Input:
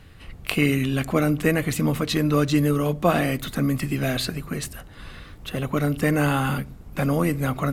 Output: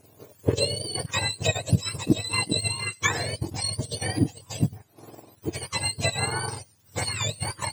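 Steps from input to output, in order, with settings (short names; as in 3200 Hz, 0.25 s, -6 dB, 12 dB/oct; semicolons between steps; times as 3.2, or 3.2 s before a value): spectrum mirrored in octaves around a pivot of 1100 Hz; transient shaper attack +7 dB, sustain -8 dB; gain -4 dB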